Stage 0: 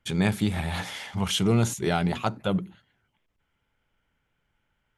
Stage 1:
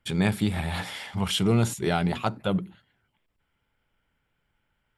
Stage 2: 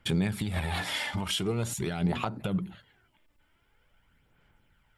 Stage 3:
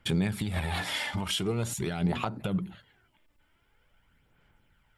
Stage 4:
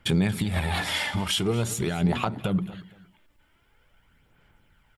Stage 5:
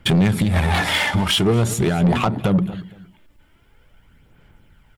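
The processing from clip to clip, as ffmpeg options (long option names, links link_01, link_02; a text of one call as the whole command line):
ffmpeg -i in.wav -af "bandreject=frequency=6300:width=6.5" out.wav
ffmpeg -i in.wav -af "acompressor=threshold=-28dB:ratio=6,alimiter=level_in=2dB:limit=-24dB:level=0:latency=1:release=166,volume=-2dB,aphaser=in_gain=1:out_gain=1:delay=3.4:decay=0.42:speed=0.45:type=sinusoidal,volume=5dB" out.wav
ffmpeg -i in.wav -af anull out.wav
ffmpeg -i in.wav -af "aecho=1:1:232|464:0.126|0.0352,volume=4.5dB" out.wav
ffmpeg -i in.wav -filter_complex "[0:a]asplit=2[link_01][link_02];[link_02]adynamicsmooth=sensitivity=5.5:basefreq=690,volume=-1.5dB[link_03];[link_01][link_03]amix=inputs=2:normalize=0,asoftclip=type=tanh:threshold=-16dB,volume=5.5dB" out.wav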